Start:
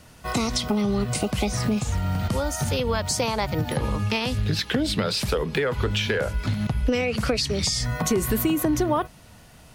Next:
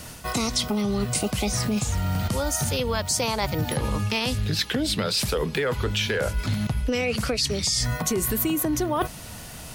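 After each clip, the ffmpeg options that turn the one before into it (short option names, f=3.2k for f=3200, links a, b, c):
-af "highshelf=f=4.7k:g=8,areverse,acompressor=threshold=-31dB:ratio=6,areverse,volume=8.5dB"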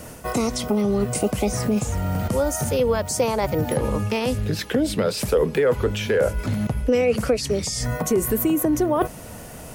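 -af "equalizer=f=250:t=o:w=1:g=3,equalizer=f=500:t=o:w=1:g=8,equalizer=f=4k:t=o:w=1:g=-8"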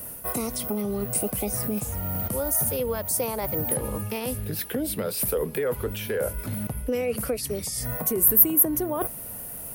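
-af "aexciter=amount=12.3:drive=1.4:freq=9.6k,volume=-7.5dB"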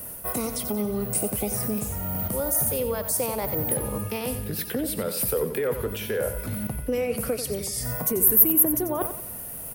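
-af "aecho=1:1:91|182|273|364:0.316|0.123|0.0481|0.0188"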